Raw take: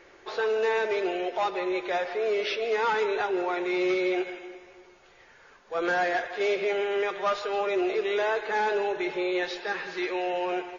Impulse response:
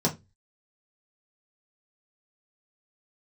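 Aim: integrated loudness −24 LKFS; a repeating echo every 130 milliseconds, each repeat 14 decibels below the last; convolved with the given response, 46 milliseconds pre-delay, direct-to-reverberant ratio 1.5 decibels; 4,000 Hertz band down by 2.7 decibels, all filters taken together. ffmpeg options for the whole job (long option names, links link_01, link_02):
-filter_complex "[0:a]equalizer=frequency=4000:width_type=o:gain=-3.5,aecho=1:1:130|260:0.2|0.0399,asplit=2[link_01][link_02];[1:a]atrim=start_sample=2205,adelay=46[link_03];[link_02][link_03]afir=irnorm=-1:irlink=0,volume=-12dB[link_04];[link_01][link_04]amix=inputs=2:normalize=0,volume=-0.5dB"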